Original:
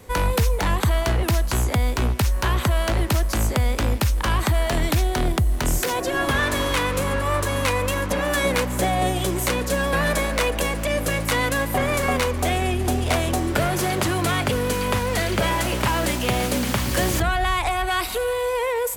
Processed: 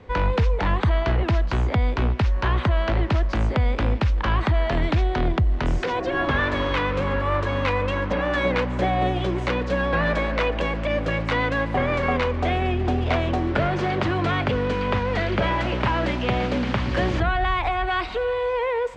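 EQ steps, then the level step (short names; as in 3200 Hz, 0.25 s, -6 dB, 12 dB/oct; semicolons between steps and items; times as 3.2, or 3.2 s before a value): LPF 3600 Hz 12 dB/oct; air absorption 110 m; 0.0 dB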